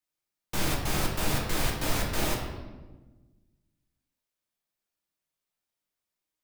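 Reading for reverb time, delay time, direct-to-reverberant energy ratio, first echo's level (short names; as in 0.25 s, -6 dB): 1.3 s, none, -1.5 dB, none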